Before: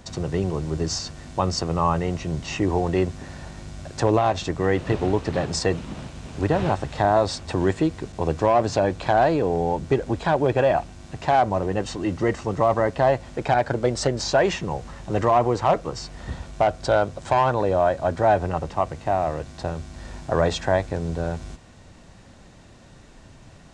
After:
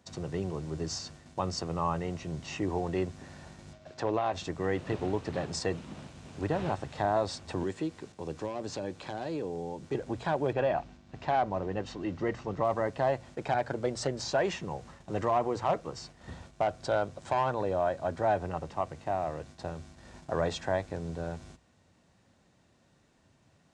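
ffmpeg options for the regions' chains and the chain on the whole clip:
ffmpeg -i in.wav -filter_complex "[0:a]asettb=1/sr,asplit=3[link_01][link_02][link_03];[link_01]atrim=end=3.734[link_04];[link_02]atrim=start=3.73:end=4.33,asetpts=PTS-STARTPTS,afade=type=in:duration=0.004:curve=qsin,afade=type=out:start_time=0.596:duration=0.004:curve=qsin,lowpass=4900,lowshelf=frequency=180:gain=-8.5,aeval=exprs='val(0)+0.00708*sin(2*PI*630*n/s)':channel_layout=same[link_05];[link_03]atrim=start=4.326[link_06];[link_04][link_05]acrossfade=duration=0.004:curve1=hsin:curve2=qsin[link_07];[link_07][link_06]acrossfade=duration=0.004:curve1=qsin:curve2=hsin,asettb=1/sr,asplit=3[link_08][link_09][link_10];[link_08]atrim=end=7.634[link_11];[link_09]atrim=start=7.63:end=9.95,asetpts=PTS-STARTPTS,afade=type=in:duration=0.004:curve=qsin,afade=type=out:start_time=2.316:duration=0.004:curve=qsin,lowshelf=frequency=150:gain=-9.5,acrossover=split=440|3000[link_12][link_13][link_14];[link_13]acompressor=threshold=-35dB:ratio=2.5:attack=3.2:release=140:knee=2.83:detection=peak[link_15];[link_12][link_15][link_14]amix=inputs=3:normalize=0,bandreject=frequency=680:width=11[link_16];[link_10]atrim=start=9.946[link_17];[link_11][link_16]acrossfade=duration=0.004:curve1=hsin:curve2=qsin[link_18];[link_18][link_17]acrossfade=duration=0.004:curve1=qsin:curve2=hsin,asettb=1/sr,asplit=3[link_19][link_20][link_21];[link_19]atrim=end=10.534[link_22];[link_20]atrim=start=10.53:end=12.65,asetpts=PTS-STARTPTS,afade=type=in:duration=0.004:curve=qsin,afade=type=out:start_time=2.116:duration=0.004:curve=qsin,lowpass=5100,aeval=exprs='val(0)+0.0112*(sin(2*PI*50*n/s)+sin(2*PI*2*50*n/s)/2+sin(2*PI*3*50*n/s)/3+sin(2*PI*4*50*n/s)/4+sin(2*PI*5*50*n/s)/5)':channel_layout=same[link_23];[link_21]atrim=start=12.646[link_24];[link_22][link_23]acrossfade=duration=0.004:curve1=hsin:curve2=qsin[link_25];[link_25][link_24]acrossfade=duration=0.004:curve1=qsin:curve2=hsin,highpass=78,agate=range=-7dB:threshold=-40dB:ratio=16:detection=peak,bandreject=frequency=60:width_type=h:width=6,bandreject=frequency=120:width_type=h:width=6,volume=-9dB" out.wav

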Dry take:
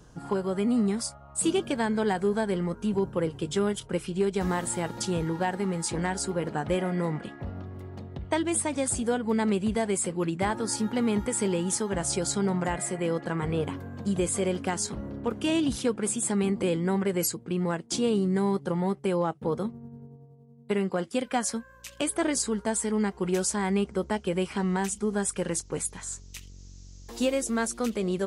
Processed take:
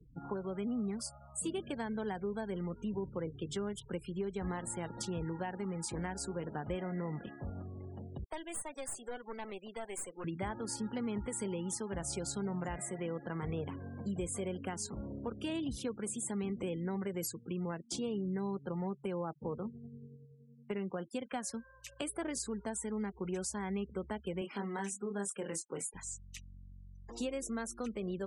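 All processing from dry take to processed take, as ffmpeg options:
ffmpeg -i in.wav -filter_complex "[0:a]asettb=1/sr,asplit=3[link_01][link_02][link_03];[link_01]atrim=end=8.244[link_04];[link_02]atrim=start=8.24:end=10.24,asetpts=PTS-STARTPTS,afade=type=in:duration=0.004:curve=qsin,afade=type=out:start_time=1.996:duration=0.004:curve=qsin,highpass=540,aeval=exprs='(tanh(22.4*val(0)+0.65)-tanh(0.65))/22.4':channel_layout=same[link_05];[link_03]atrim=start=10.236[link_06];[link_04][link_05]acrossfade=duration=0.004:curve1=hsin:curve2=qsin[link_07];[link_07][link_06]acrossfade=duration=0.004:curve1=qsin:curve2=hsin,asettb=1/sr,asplit=3[link_08][link_09][link_10];[link_08]atrim=end=24.414[link_11];[link_09]atrim=start=24.41:end=25.94,asetpts=PTS-STARTPTS,afade=type=in:duration=0.004:curve=qsin,afade=type=out:start_time=1.526:duration=0.004:curve=qsin,highpass=200,asplit=2[link_12][link_13];[link_13]adelay=25,volume=-5dB[link_14];[link_12][link_14]amix=inputs=2:normalize=0,atrim=end_sample=67473[link_15];[link_10]atrim=start=25.936[link_16];[link_11][link_15]acrossfade=duration=0.004:curve1=hsin:curve2=qsin[link_17];[link_17][link_16]acrossfade=duration=0.004:curve1=qsin:curve2=hsin,acrossover=split=120[link_18][link_19];[link_19]acompressor=threshold=-34dB:ratio=2[link_20];[link_18][link_20]amix=inputs=2:normalize=0,afftfilt=real='re*gte(hypot(re,im),0.00708)':imag='im*gte(hypot(re,im),0.00708)':win_size=1024:overlap=0.75,volume=-5.5dB" out.wav

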